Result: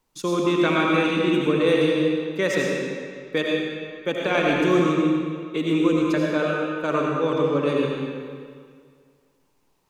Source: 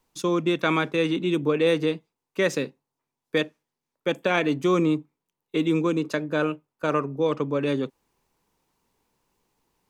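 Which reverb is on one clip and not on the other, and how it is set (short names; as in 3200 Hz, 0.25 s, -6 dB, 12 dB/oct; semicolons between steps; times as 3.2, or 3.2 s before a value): digital reverb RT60 2 s, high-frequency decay 0.85×, pre-delay 45 ms, DRR -2.5 dB; gain -1 dB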